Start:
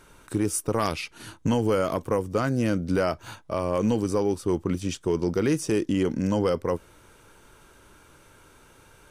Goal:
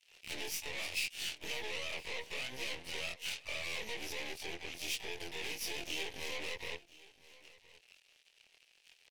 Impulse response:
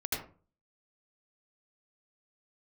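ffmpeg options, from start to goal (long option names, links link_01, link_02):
-filter_complex "[0:a]afftfilt=real='re':imag='-im':win_size=2048:overlap=0.75,aeval=exprs='sgn(val(0))*max(abs(val(0))-0.00237,0)':channel_layout=same,acompressor=threshold=-36dB:ratio=20,highpass=frequency=440:width=0.5412,highpass=frequency=440:width=1.3066,equalizer=frequency=990:width_type=q:width=4:gain=-7,equalizer=frequency=2200:width_type=q:width=4:gain=-10,equalizer=frequency=3500:width_type=q:width=4:gain=-4,lowpass=frequency=5200:width=0.5412,lowpass=frequency=5200:width=1.3066,alimiter=level_in=19dB:limit=-24dB:level=0:latency=1:release=75,volume=-19dB,aeval=exprs='0.0075*(cos(1*acos(clip(val(0)/0.0075,-1,1)))-cos(1*PI/2))+0.000188*(cos(5*acos(clip(val(0)/0.0075,-1,1)))-cos(5*PI/2))+0.00237*(cos(6*acos(clip(val(0)/0.0075,-1,1)))-cos(6*PI/2))+0.0000944*(cos(7*acos(clip(val(0)/0.0075,-1,1)))-cos(7*PI/2))':channel_layout=same,asplit=3[link_01][link_02][link_03];[link_02]asetrate=66075,aresample=44100,atempo=0.66742,volume=-16dB[link_04];[link_03]asetrate=88200,aresample=44100,atempo=0.5,volume=-6dB[link_05];[link_01][link_04][link_05]amix=inputs=3:normalize=0,highshelf=frequency=1800:width_type=q:width=3:gain=9.5,asplit=2[link_06][link_07];[link_07]aecho=0:1:1017:0.0944[link_08];[link_06][link_08]amix=inputs=2:normalize=0,volume=3dB"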